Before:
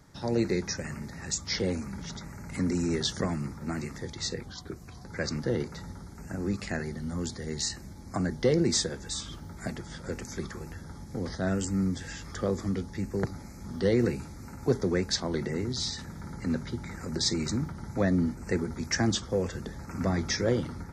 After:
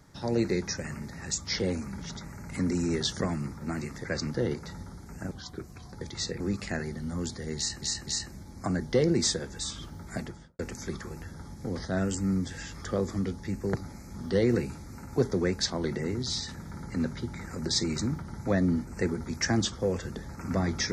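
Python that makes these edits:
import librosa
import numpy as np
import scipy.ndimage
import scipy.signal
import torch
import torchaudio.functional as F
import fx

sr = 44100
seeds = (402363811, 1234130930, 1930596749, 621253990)

y = fx.studio_fade_out(x, sr, start_s=9.71, length_s=0.38)
y = fx.edit(y, sr, fx.swap(start_s=4.04, length_s=0.39, other_s=5.13, other_length_s=1.27),
    fx.repeat(start_s=7.57, length_s=0.25, count=3), tone=tone)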